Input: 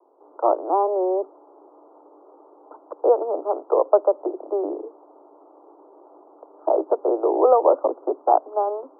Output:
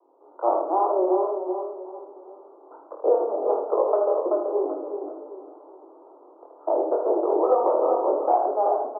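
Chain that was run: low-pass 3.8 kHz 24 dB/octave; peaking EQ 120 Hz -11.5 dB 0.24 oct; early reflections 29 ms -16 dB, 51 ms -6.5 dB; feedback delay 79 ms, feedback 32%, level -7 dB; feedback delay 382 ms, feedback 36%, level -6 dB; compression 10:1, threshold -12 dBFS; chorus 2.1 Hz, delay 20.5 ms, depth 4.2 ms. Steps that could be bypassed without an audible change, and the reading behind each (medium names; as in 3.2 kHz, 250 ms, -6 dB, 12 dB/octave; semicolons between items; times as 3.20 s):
low-pass 3.8 kHz: input has nothing above 1.3 kHz; peaking EQ 120 Hz: input has nothing below 270 Hz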